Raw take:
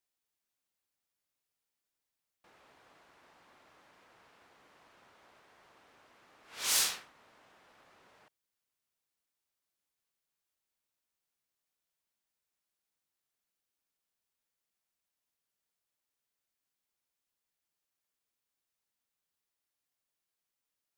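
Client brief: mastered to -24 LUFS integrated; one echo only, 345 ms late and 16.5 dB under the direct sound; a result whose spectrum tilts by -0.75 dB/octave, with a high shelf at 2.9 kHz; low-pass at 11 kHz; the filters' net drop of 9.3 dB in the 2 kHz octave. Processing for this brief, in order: low-pass 11 kHz; peaking EQ 2 kHz -9 dB; treble shelf 2.9 kHz -7.5 dB; delay 345 ms -16.5 dB; trim +15 dB

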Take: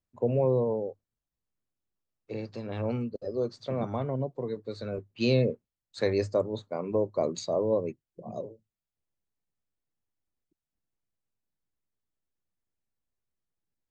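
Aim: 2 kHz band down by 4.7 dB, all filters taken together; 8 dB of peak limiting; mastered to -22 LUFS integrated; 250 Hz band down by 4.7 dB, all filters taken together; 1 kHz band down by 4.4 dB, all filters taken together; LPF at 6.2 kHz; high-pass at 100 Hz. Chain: high-pass 100 Hz; low-pass 6.2 kHz; peaking EQ 250 Hz -5.5 dB; peaking EQ 1 kHz -5 dB; peaking EQ 2 kHz -5 dB; trim +14 dB; peak limiter -10 dBFS

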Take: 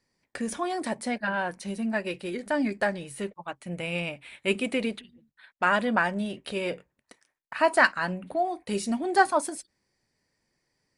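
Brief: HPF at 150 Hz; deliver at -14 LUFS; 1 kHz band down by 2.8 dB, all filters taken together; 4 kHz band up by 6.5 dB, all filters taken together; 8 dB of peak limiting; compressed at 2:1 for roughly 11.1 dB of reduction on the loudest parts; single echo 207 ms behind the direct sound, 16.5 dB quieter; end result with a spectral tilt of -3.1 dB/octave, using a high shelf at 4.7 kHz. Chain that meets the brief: high-pass 150 Hz; peaking EQ 1 kHz -4.5 dB; peaking EQ 4 kHz +6.5 dB; treble shelf 4.7 kHz +6 dB; compression 2:1, threshold -36 dBFS; peak limiter -25 dBFS; delay 207 ms -16.5 dB; trim +22.5 dB

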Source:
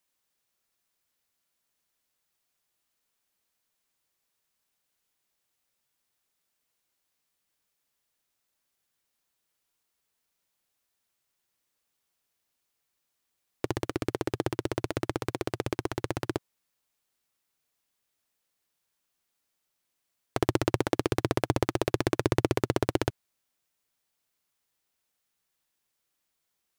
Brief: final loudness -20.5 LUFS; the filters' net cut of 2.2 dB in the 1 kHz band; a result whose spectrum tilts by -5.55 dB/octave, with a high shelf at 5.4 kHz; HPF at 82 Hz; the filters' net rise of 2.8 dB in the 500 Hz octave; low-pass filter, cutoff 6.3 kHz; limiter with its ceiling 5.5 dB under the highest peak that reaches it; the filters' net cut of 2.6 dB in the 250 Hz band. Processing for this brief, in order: high-pass 82 Hz; low-pass 6.3 kHz; peaking EQ 250 Hz -8.5 dB; peaking EQ 500 Hz +8 dB; peaking EQ 1 kHz -5.5 dB; treble shelf 5.4 kHz -7.5 dB; trim +12 dB; peak limiter -1 dBFS

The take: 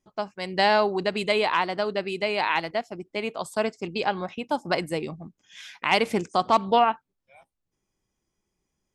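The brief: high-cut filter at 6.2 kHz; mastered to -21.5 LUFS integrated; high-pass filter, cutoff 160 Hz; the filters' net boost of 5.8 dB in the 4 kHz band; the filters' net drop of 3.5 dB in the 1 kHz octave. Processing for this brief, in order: high-pass 160 Hz; low-pass 6.2 kHz; peaking EQ 1 kHz -5 dB; peaking EQ 4 kHz +8.5 dB; trim +4 dB

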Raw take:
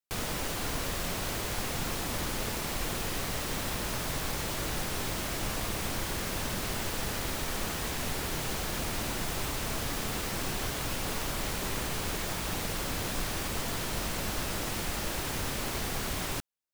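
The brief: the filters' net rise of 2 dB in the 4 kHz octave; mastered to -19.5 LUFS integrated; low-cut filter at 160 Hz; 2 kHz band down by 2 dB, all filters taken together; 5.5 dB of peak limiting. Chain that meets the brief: high-pass 160 Hz; peaking EQ 2 kHz -3.5 dB; peaking EQ 4 kHz +3.5 dB; trim +15.5 dB; peak limiter -11.5 dBFS

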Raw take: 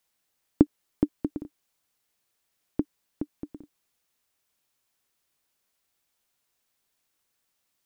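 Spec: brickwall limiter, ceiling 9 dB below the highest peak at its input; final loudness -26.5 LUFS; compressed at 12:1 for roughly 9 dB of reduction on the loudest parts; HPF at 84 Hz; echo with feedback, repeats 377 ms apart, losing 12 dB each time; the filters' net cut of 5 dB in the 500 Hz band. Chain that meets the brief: high-pass 84 Hz; peaking EQ 500 Hz -8.5 dB; compression 12:1, threshold -26 dBFS; peak limiter -21 dBFS; feedback delay 377 ms, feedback 25%, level -12 dB; trim +18 dB

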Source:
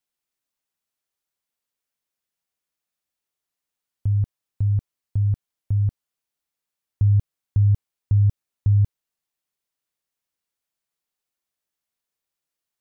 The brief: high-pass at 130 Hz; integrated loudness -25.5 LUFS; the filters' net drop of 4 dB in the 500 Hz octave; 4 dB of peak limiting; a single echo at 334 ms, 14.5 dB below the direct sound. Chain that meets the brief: high-pass 130 Hz; peaking EQ 500 Hz -5.5 dB; peak limiter -22 dBFS; delay 334 ms -14.5 dB; trim +6 dB

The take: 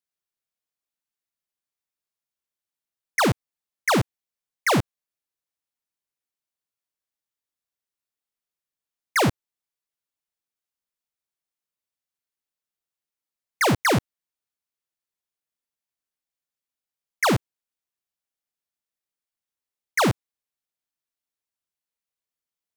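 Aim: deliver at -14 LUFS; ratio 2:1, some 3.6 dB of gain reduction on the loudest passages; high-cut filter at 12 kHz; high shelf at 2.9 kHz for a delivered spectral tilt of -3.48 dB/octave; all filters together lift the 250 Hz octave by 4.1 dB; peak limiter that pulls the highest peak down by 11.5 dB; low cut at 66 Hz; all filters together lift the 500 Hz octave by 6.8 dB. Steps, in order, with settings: high-pass 66 Hz; low-pass 12 kHz; peaking EQ 250 Hz +3 dB; peaking EQ 500 Hz +7.5 dB; treble shelf 2.9 kHz +4 dB; compression 2:1, threshold -18 dBFS; trim +17.5 dB; peak limiter -5.5 dBFS

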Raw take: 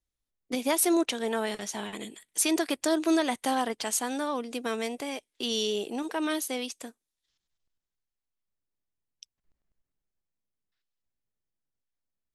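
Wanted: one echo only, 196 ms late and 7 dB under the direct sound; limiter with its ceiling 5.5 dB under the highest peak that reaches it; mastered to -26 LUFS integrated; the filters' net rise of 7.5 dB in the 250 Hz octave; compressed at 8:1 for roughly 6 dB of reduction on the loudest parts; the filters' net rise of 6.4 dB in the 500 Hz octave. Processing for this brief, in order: peaking EQ 250 Hz +7.5 dB; peaking EQ 500 Hz +6 dB; compression 8:1, threshold -20 dBFS; peak limiter -18 dBFS; delay 196 ms -7 dB; trim +1 dB

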